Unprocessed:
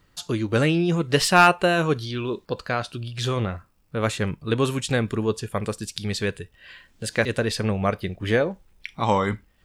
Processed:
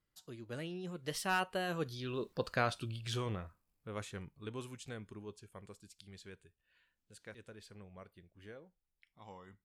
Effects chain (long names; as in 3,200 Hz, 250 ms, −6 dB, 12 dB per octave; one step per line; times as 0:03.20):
source passing by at 0:02.60, 18 m/s, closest 6.2 metres
parametric band 13,000 Hz +6 dB 0.97 octaves
level −7 dB